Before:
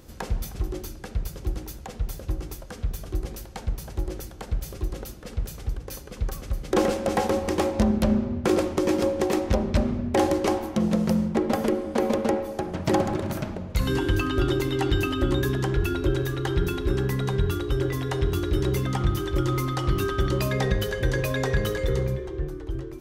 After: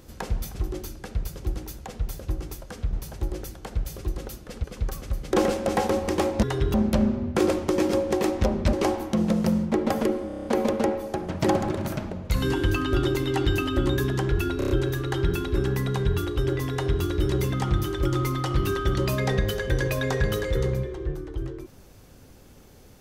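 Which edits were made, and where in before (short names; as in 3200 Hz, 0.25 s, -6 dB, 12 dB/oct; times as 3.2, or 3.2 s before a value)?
2.93–3.69 cut
5.4–6.04 cut
9.82–10.36 cut
11.9 stutter 0.03 s, 7 plays
16.03 stutter 0.03 s, 5 plays
18.04–18.35 copy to 7.83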